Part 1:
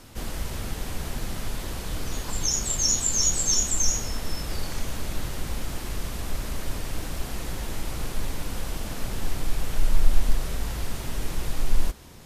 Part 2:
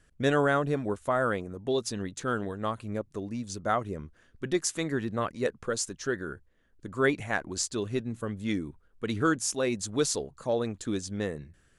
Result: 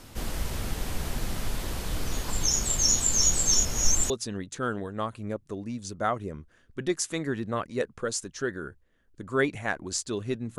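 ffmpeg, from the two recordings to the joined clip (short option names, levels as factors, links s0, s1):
-filter_complex "[0:a]apad=whole_dur=10.58,atrim=end=10.58,asplit=2[s0][s1];[s0]atrim=end=3.652[s2];[s1]atrim=start=3.648:end=4.102,asetpts=PTS-STARTPTS,areverse[s3];[1:a]atrim=start=1.748:end=8.23[s4];[s2][s3]acrossfade=d=0.004:c1=hsin:c2=hsin[s5];[s5][s4]acrossfade=d=0.004:c1=hsin:c2=hsin"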